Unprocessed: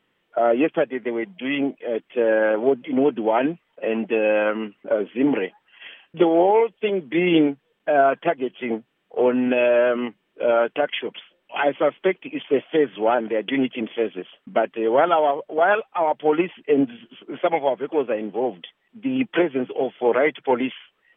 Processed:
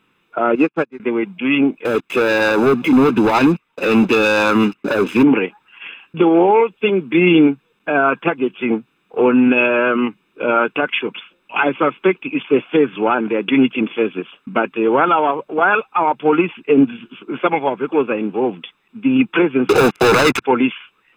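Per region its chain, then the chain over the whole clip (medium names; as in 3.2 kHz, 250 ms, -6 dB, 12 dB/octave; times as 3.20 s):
0.55–1.00 s: block-companded coder 5-bit + low-pass 2.6 kHz + upward expansion 2.5:1, over -35 dBFS
1.85–5.23 s: compression 1.5:1, threshold -32 dBFS + waveshaping leveller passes 3
19.69–20.42 s: low-pass 2.3 kHz 24 dB/octave + waveshaping leveller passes 5 + three bands compressed up and down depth 70%
whole clip: bass shelf 86 Hz -6 dB; comb 0.8 ms, depth 67%; loudness maximiser +10 dB; trim -3 dB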